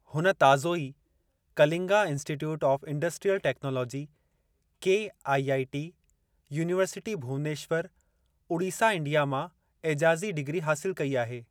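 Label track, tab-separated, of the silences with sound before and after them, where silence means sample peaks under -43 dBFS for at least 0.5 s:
0.920000	1.570000	silence
4.060000	4.820000	silence
5.900000	6.510000	silence
7.870000	8.500000	silence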